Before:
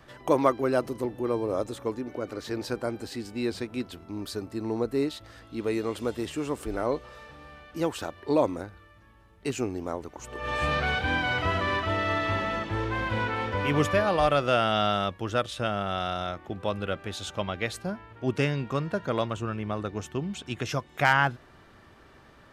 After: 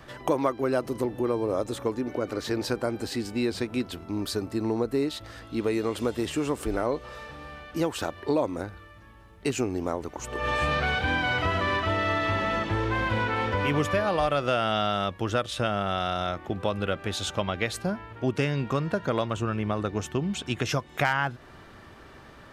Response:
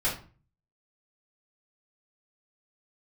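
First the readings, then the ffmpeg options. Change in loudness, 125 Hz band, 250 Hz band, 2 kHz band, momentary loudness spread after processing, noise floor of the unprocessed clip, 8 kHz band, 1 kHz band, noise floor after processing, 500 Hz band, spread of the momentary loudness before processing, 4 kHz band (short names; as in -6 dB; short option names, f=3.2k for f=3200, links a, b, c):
+0.5 dB, +1.5 dB, +2.0 dB, +0.5 dB, 7 LU, -55 dBFS, +4.0 dB, 0.0 dB, -49 dBFS, +0.5 dB, 12 LU, +1.5 dB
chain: -af "acompressor=threshold=-29dB:ratio=3,volume=5.5dB"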